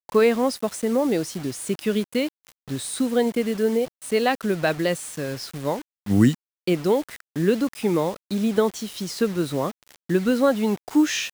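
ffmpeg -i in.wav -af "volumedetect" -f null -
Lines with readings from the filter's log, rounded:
mean_volume: -23.2 dB
max_volume: -5.0 dB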